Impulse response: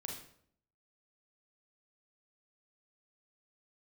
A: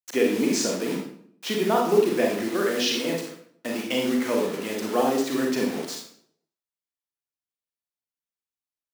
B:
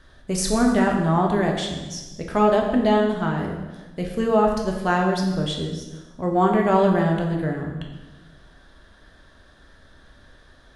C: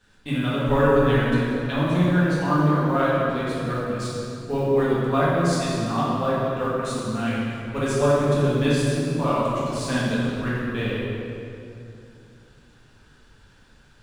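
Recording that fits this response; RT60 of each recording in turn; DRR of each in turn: A; 0.65, 1.2, 2.7 s; -0.5, 0.5, -9.0 dB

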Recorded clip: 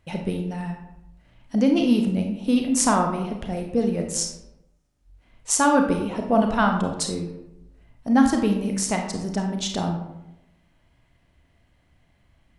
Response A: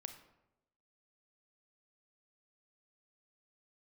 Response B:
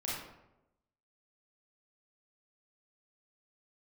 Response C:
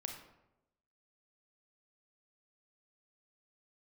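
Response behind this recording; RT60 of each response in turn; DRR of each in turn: C; 0.95, 0.90, 0.95 s; 7.0, -7.0, 3.0 dB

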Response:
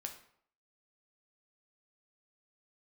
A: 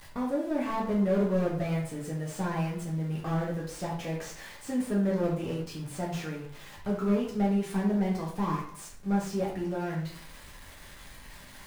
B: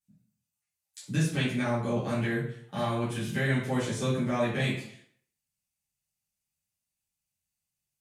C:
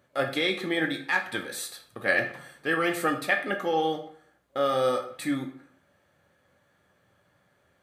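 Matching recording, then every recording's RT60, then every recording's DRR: C; 0.65, 0.65, 0.65 s; -4.0, -12.0, 3.5 dB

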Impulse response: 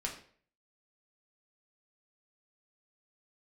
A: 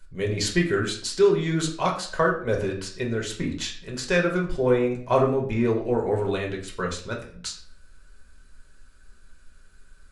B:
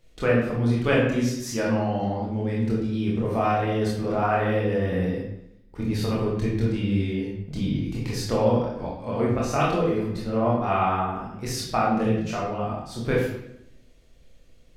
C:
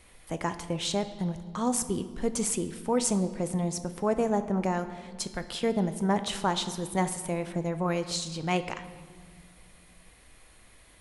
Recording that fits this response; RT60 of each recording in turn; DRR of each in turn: A; 0.50 s, 0.80 s, not exponential; -1.0, -5.0, 9.5 dB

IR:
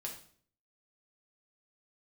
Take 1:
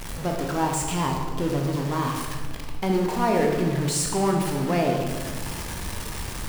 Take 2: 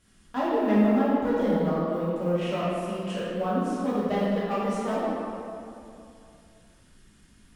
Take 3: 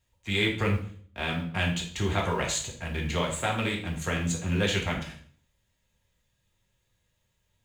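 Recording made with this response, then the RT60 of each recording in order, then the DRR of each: 3; 1.5, 2.7, 0.50 s; 0.5, -10.0, -1.5 dB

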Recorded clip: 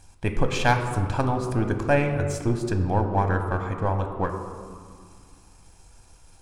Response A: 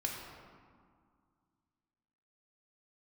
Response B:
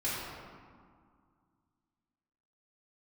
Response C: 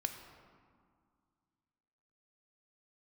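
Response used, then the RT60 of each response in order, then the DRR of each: C; 2.0, 2.0, 2.0 s; -1.5, -10.5, 5.0 dB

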